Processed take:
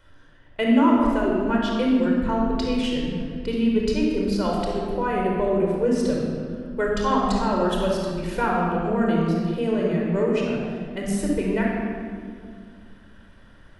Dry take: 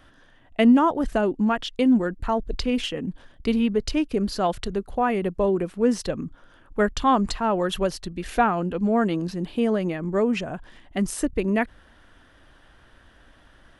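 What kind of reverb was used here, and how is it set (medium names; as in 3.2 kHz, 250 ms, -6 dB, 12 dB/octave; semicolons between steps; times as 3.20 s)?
simulated room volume 3900 m³, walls mixed, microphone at 4.8 m; trim -6.5 dB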